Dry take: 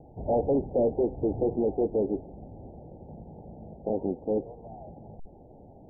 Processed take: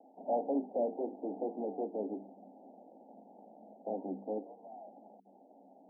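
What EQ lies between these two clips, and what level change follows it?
Chebyshev high-pass with heavy ripple 190 Hz, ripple 9 dB
mains-hum notches 50/100/150/200/250/300/350/400/450 Hz
−3.0 dB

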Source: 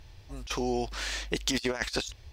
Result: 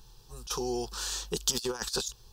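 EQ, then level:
high-shelf EQ 5,700 Hz +11 dB
phaser with its sweep stopped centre 420 Hz, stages 8
0.0 dB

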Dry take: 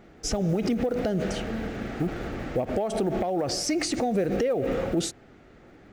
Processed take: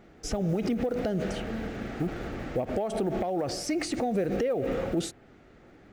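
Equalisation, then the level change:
dynamic equaliser 5,900 Hz, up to −5 dB, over −45 dBFS, Q 1.1
−2.5 dB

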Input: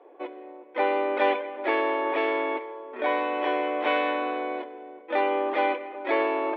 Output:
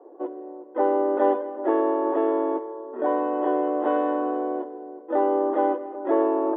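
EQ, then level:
moving average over 19 samples
high-frequency loss of the air 460 metres
parametric band 330 Hz +5 dB 0.51 octaves
+4.5 dB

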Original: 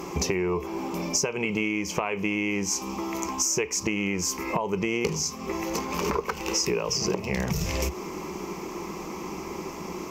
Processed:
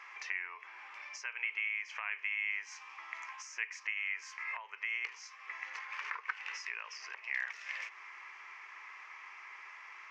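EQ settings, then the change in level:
four-pole ladder high-pass 1,600 Hz, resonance 65%
head-to-tape spacing loss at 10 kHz 30 dB
high-shelf EQ 5,200 Hz −7 dB
+8.5 dB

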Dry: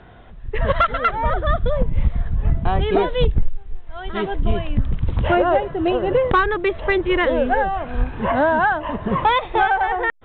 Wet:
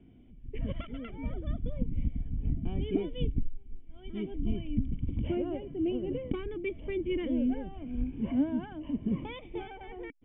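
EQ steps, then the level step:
formant resonators in series i
high-frequency loss of the air 220 metres
0.0 dB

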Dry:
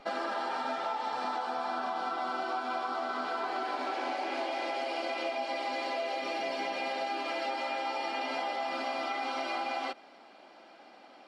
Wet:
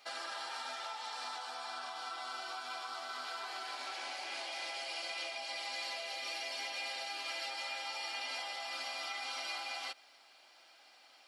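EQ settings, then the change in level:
first difference
+7.0 dB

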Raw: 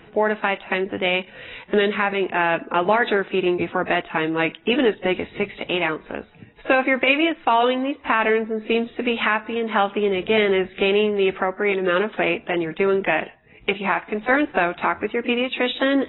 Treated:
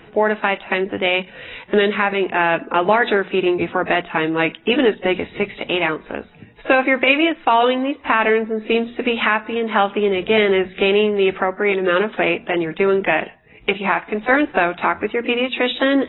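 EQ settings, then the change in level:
mains-hum notches 60/120/180/240 Hz
+3.0 dB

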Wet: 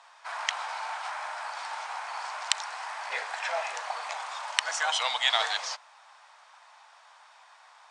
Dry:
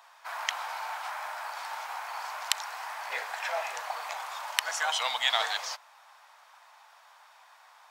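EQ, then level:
Butterworth high-pass 240 Hz
elliptic low-pass filter 9,200 Hz, stop band 40 dB
+2.0 dB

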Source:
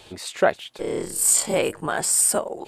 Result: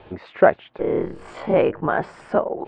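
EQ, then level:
Bessel low-pass filter 1,500 Hz, order 4
+5.5 dB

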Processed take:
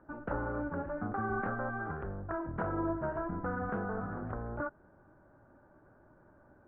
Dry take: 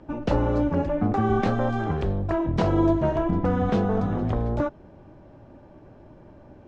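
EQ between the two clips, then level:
transistor ladder low-pass 1,600 Hz, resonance 70%
high-frequency loss of the air 260 metres
low-shelf EQ 340 Hz −4 dB
0.0 dB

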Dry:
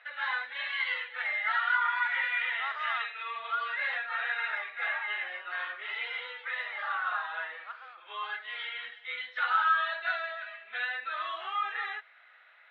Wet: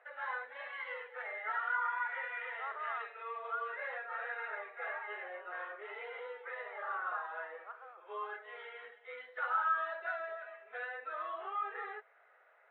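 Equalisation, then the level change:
dynamic equaliser 770 Hz, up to −4 dB, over −45 dBFS, Q 2.4
four-pole ladder band-pass 520 Hz, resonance 40%
parametric band 420 Hz +4 dB 0.21 octaves
+13.0 dB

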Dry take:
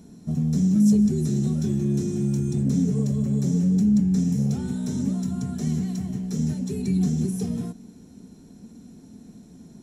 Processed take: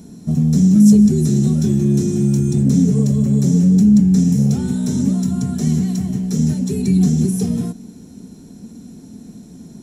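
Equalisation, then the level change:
parametric band 190 Hz +3 dB 2.8 octaves
high-shelf EQ 4,400 Hz +5.5 dB
+5.5 dB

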